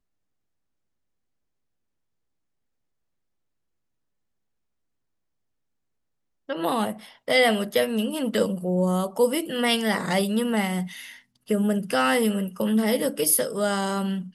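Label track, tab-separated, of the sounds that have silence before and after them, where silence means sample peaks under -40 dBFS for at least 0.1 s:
6.490000	7.120000	sound
7.280000	11.170000	sound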